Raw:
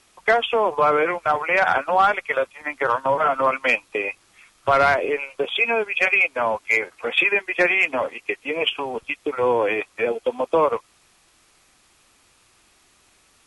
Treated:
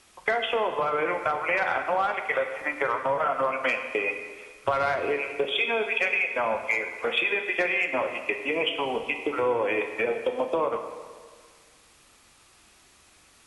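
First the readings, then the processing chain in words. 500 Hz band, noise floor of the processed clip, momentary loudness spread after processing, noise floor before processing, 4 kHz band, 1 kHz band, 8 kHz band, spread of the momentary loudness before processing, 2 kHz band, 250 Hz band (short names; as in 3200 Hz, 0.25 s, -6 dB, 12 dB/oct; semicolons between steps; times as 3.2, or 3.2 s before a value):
-5.0 dB, -58 dBFS, 5 LU, -59 dBFS, -3.5 dB, -6.5 dB, n/a, 9 LU, -5.5 dB, -4.0 dB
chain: compressor, threshold -23 dBFS, peak gain reduction 10.5 dB; plate-style reverb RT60 1.7 s, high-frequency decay 0.9×, DRR 5.5 dB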